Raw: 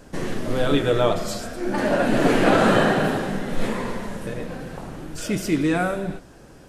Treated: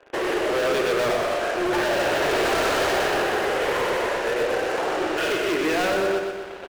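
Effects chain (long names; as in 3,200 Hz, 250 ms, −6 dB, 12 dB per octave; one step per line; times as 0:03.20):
camcorder AGC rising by 5.5 dB per second
Chebyshev band-pass filter 360–3,000 Hz, order 4
leveller curve on the samples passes 3
in parallel at −1 dB: downward compressor, threshold −24 dBFS, peak gain reduction 13 dB
on the sum: hard clipping −18.5 dBFS, distortion −7 dB
on a send: repeating echo 123 ms, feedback 55%, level −5 dB
on the sum: level −4 dB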